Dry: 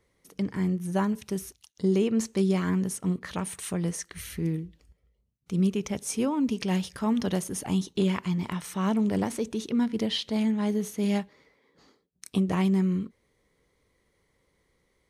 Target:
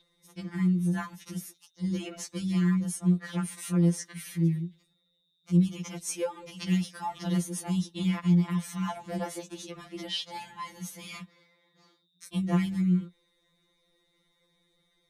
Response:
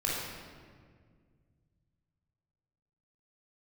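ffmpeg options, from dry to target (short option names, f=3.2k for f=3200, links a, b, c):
-af "aeval=exprs='val(0)+0.00562*sin(2*PI*3700*n/s)':c=same,afftfilt=real='re*2.83*eq(mod(b,8),0)':imag='im*2.83*eq(mod(b,8),0)':win_size=2048:overlap=0.75"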